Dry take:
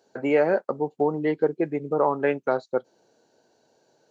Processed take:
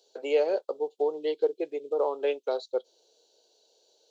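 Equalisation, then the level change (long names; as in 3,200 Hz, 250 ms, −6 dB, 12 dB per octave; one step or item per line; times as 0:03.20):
four-pole ladder high-pass 380 Hz, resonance 50%
high shelf with overshoot 2,500 Hz +11.5 dB, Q 3
0.0 dB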